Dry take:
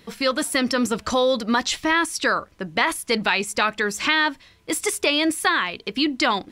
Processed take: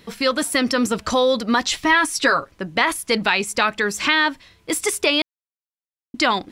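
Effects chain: 1.84–2.51 comb 7.3 ms, depth 69%; 5.22–6.14 mute; gain +2 dB

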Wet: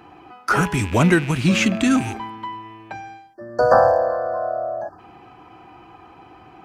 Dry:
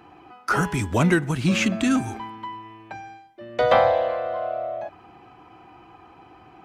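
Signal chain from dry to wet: rattling part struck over -33 dBFS, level -26 dBFS; spectral delete 3.34–4.99, 1800–4300 Hz; gain +3.5 dB

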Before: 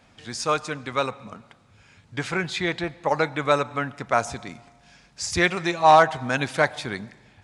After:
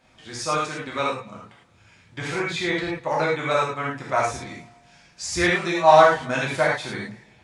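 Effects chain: non-linear reverb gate 0.13 s flat, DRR -5.5 dB; gain -5.5 dB

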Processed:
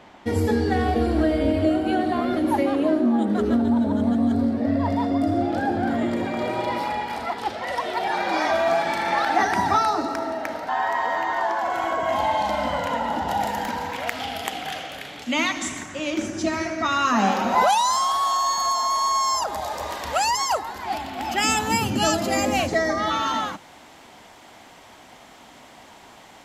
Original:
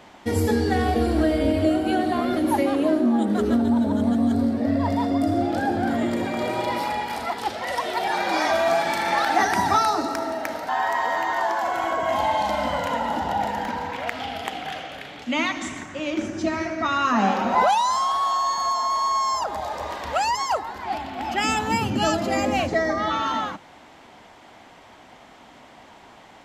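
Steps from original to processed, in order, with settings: high shelf 5700 Hz -8 dB, from 11.7 s -2 dB, from 13.28 s +11.5 dB

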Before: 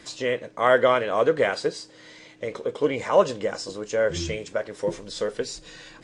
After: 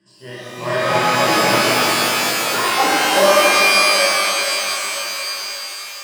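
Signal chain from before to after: added harmonics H 7 -20 dB, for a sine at -6.5 dBFS; low shelf 240 Hz +9 dB; notch 530 Hz, Q 12; high-pass sweep 150 Hz -> 1100 Hz, 2.67–4.38; ripple EQ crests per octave 1.3, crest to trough 15 dB; echoes that change speed 0.403 s, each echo +5 st, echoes 3; shimmer reverb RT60 3.9 s, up +12 st, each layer -2 dB, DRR -10.5 dB; gain -12 dB

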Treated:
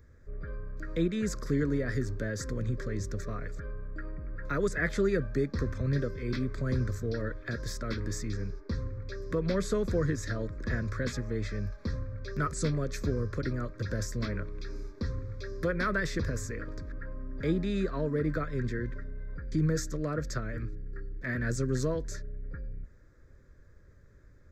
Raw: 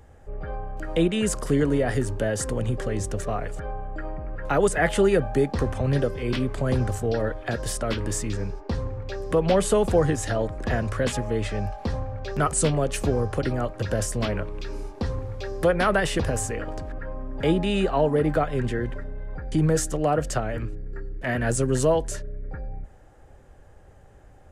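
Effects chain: fixed phaser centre 2900 Hz, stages 6; gain -5 dB

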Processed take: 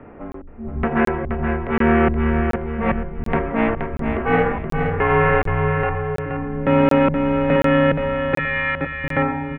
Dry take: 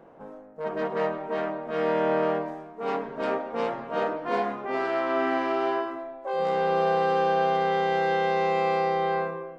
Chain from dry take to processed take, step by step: 8.37–9.04 elliptic band-stop 180–1500 Hz; in parallel at -2 dB: compressor, threshold -32 dBFS, peak gain reduction 11.5 dB; on the sum: added harmonics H 7 -33 dB, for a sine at -10.5 dBFS; LFO low-pass square 1.2 Hz 260–2400 Hz; on a send: feedback echo 0.474 s, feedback 36%, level -6 dB; on the sum: mistuned SSB -240 Hz 240–3400 Hz; crackling interface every 0.73 s, samples 1024, zero, from 0.32; gain +6.5 dB

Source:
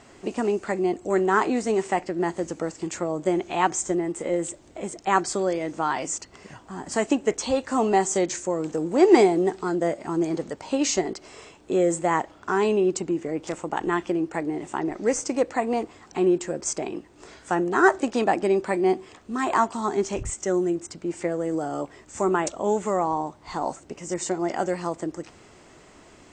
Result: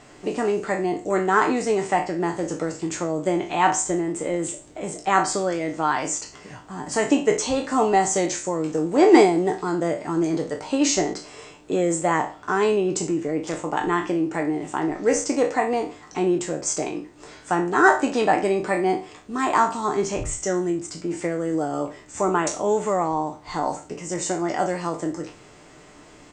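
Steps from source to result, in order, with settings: spectral trails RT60 0.36 s; comb 6.7 ms, depth 34%; gain +1 dB

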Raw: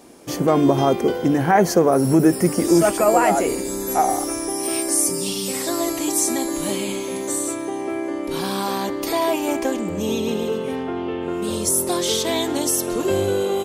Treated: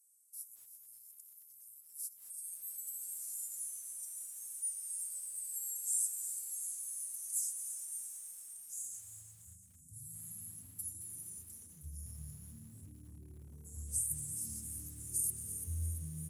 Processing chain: inverse Chebyshev band-stop 340–3700 Hz, stop band 70 dB; bell 530 Hz -13 dB 1.8 oct; wide varispeed 0.837×; high-pass sweep 1800 Hz -> 100 Hz, 8.05–9.19; on a send: frequency-shifting echo 0.34 s, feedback 56%, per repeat +75 Hz, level -11 dB; on the sum: negative-ratio compressor -29 dBFS, ratio -0.5; HPF 77 Hz 24 dB/oct; high shelf 9400 Hz -7.5 dB; lo-fi delay 0.222 s, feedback 35%, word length 9-bit, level -12 dB

